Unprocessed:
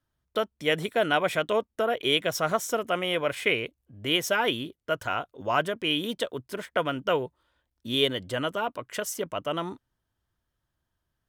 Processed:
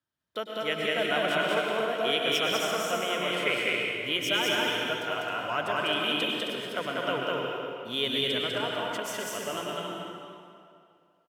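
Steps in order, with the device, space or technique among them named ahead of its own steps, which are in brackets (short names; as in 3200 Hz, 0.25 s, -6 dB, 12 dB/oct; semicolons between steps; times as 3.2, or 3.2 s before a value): stadium PA (HPF 130 Hz 12 dB/oct; bell 3100 Hz +4 dB 2.2 oct; loudspeakers at several distances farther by 68 m -1 dB, 91 m -6 dB; reverb RT60 2.4 s, pre-delay 96 ms, DRR 0.5 dB); gain -8 dB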